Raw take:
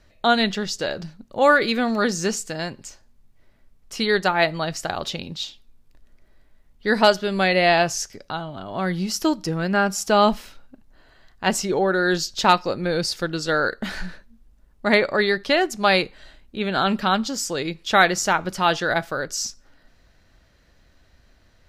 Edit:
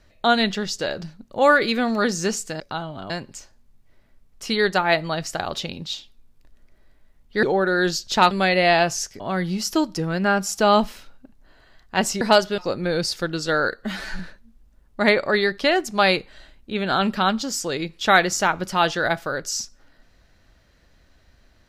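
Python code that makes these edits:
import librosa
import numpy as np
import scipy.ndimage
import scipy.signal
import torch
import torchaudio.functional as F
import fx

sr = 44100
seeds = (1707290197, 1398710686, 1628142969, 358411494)

y = fx.edit(x, sr, fx.swap(start_s=6.93, length_s=0.37, other_s=11.7, other_length_s=0.88),
    fx.move(start_s=8.19, length_s=0.5, to_s=2.6),
    fx.stretch_span(start_s=13.76, length_s=0.29, factor=1.5), tone=tone)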